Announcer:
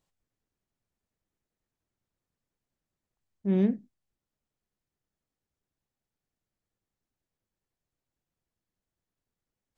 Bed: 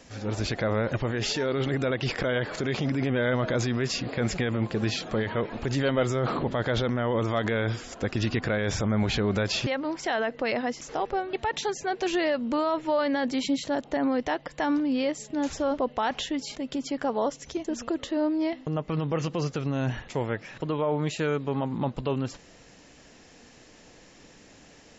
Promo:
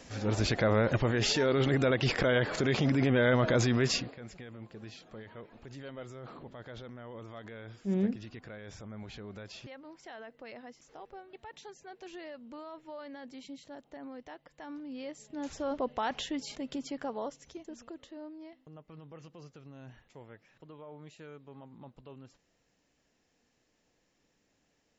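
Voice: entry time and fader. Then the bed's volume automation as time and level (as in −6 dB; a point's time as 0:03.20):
4.40 s, −5.0 dB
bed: 0:03.96 0 dB
0:04.18 −19.5 dB
0:14.61 −19.5 dB
0:15.85 −5.5 dB
0:16.65 −5.5 dB
0:18.52 −22 dB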